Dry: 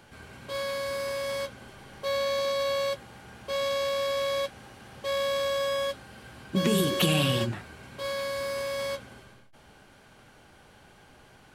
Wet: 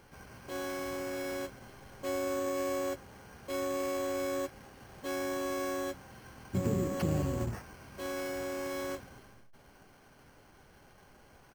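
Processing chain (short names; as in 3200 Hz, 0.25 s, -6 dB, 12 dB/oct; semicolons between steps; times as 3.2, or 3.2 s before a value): treble ducked by the level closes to 990 Hz, closed at -21.5 dBFS; harmoniser -12 st -5 dB, -7 st -4 dB; in parallel at -12 dB: wrapped overs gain 25 dB; on the sum: careless resampling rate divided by 6×, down filtered, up hold; gain -8 dB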